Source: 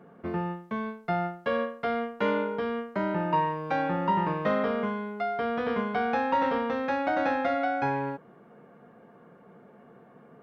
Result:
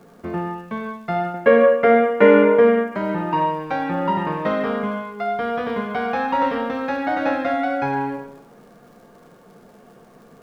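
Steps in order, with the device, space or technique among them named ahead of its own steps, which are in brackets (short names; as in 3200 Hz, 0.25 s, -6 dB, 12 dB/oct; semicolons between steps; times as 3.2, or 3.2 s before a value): vinyl LP (wow and flutter 9.2 cents; crackle 110/s -49 dBFS; pink noise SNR 38 dB); 1.34–2.95 graphic EQ 250/500/2000/4000 Hz +8/+11/+12/-8 dB; digital reverb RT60 0.79 s, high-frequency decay 0.95×, pre-delay 15 ms, DRR 6 dB; gain +4 dB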